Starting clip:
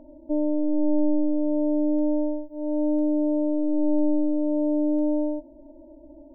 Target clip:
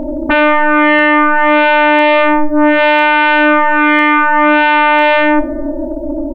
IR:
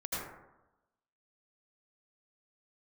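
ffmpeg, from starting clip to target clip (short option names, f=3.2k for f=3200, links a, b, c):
-filter_complex "[0:a]aecho=1:1:31|53:0.376|0.126,aeval=exprs='0.282*sin(PI/2*8.91*val(0)/0.282)':c=same,asplit=2[a][b];[1:a]atrim=start_sample=2205[c];[b][c]afir=irnorm=-1:irlink=0,volume=-22dB[d];[a][d]amix=inputs=2:normalize=0,volume=4.5dB"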